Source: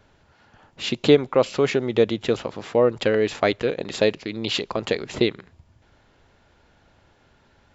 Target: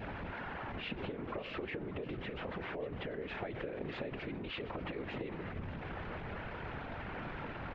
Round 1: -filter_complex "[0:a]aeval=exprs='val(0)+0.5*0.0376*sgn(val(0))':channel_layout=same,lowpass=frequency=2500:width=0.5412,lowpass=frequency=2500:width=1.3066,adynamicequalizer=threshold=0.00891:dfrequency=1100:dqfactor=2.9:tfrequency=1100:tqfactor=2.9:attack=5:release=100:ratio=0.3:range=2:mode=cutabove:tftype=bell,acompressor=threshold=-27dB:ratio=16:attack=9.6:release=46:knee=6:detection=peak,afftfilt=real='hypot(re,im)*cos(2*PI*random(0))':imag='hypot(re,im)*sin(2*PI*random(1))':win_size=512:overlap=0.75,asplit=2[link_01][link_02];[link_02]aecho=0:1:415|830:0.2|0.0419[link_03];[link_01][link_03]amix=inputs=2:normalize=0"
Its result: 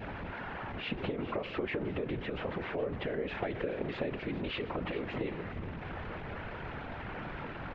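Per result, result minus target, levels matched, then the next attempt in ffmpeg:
downward compressor: peak gain reduction −6.5 dB; echo 178 ms early
-filter_complex "[0:a]aeval=exprs='val(0)+0.5*0.0376*sgn(val(0))':channel_layout=same,lowpass=frequency=2500:width=0.5412,lowpass=frequency=2500:width=1.3066,adynamicequalizer=threshold=0.00891:dfrequency=1100:dqfactor=2.9:tfrequency=1100:tqfactor=2.9:attack=5:release=100:ratio=0.3:range=2:mode=cutabove:tftype=bell,acompressor=threshold=-34dB:ratio=16:attack=9.6:release=46:knee=6:detection=peak,afftfilt=real='hypot(re,im)*cos(2*PI*random(0))':imag='hypot(re,im)*sin(2*PI*random(1))':win_size=512:overlap=0.75,asplit=2[link_01][link_02];[link_02]aecho=0:1:415|830:0.2|0.0419[link_03];[link_01][link_03]amix=inputs=2:normalize=0"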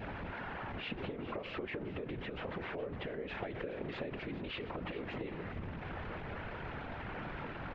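echo 178 ms early
-filter_complex "[0:a]aeval=exprs='val(0)+0.5*0.0376*sgn(val(0))':channel_layout=same,lowpass=frequency=2500:width=0.5412,lowpass=frequency=2500:width=1.3066,adynamicequalizer=threshold=0.00891:dfrequency=1100:dqfactor=2.9:tfrequency=1100:tqfactor=2.9:attack=5:release=100:ratio=0.3:range=2:mode=cutabove:tftype=bell,acompressor=threshold=-34dB:ratio=16:attack=9.6:release=46:knee=6:detection=peak,afftfilt=real='hypot(re,im)*cos(2*PI*random(0))':imag='hypot(re,im)*sin(2*PI*random(1))':win_size=512:overlap=0.75,asplit=2[link_01][link_02];[link_02]aecho=0:1:593|1186:0.2|0.0419[link_03];[link_01][link_03]amix=inputs=2:normalize=0"

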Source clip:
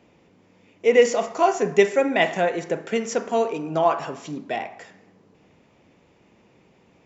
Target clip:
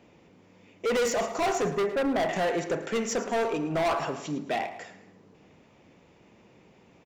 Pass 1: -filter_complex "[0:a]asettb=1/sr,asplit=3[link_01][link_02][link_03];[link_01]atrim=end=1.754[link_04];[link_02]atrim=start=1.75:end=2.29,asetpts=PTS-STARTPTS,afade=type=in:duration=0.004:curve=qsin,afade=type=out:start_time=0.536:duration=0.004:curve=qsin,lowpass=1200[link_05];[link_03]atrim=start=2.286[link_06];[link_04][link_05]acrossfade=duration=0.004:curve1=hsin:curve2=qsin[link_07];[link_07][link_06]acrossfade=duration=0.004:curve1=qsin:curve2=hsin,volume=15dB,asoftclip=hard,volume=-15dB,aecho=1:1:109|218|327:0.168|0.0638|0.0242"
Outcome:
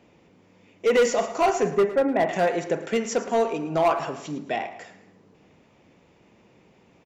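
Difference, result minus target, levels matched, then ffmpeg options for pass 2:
gain into a clipping stage and back: distortion −7 dB
-filter_complex "[0:a]asettb=1/sr,asplit=3[link_01][link_02][link_03];[link_01]atrim=end=1.754[link_04];[link_02]atrim=start=1.75:end=2.29,asetpts=PTS-STARTPTS,afade=type=in:duration=0.004:curve=qsin,afade=type=out:start_time=0.536:duration=0.004:curve=qsin,lowpass=1200[link_05];[link_03]atrim=start=2.286[link_06];[link_04][link_05]acrossfade=duration=0.004:curve1=hsin:curve2=qsin[link_07];[link_07][link_06]acrossfade=duration=0.004:curve1=qsin:curve2=hsin,volume=23.5dB,asoftclip=hard,volume=-23.5dB,aecho=1:1:109|218|327:0.168|0.0638|0.0242"

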